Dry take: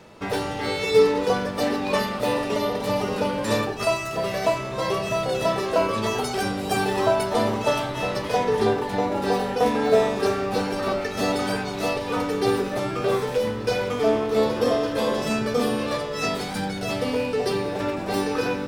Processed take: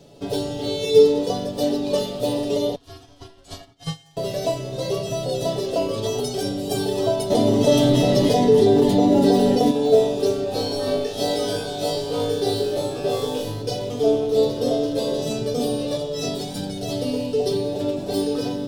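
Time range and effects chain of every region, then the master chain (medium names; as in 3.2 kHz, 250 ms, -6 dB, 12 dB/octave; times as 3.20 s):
2.75–4.17 s: frequency weighting A + ring modulator 500 Hz + upward expansion 2.5:1, over -38 dBFS
7.30–9.71 s: small resonant body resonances 230/2000 Hz, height 9 dB, ringing for 25 ms + level flattener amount 70%
10.44–13.62 s: tone controls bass -4 dB, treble -2 dB + flutter echo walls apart 3.3 m, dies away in 0.57 s
whole clip: high-order bell 1.5 kHz -14.5 dB; comb 7.1 ms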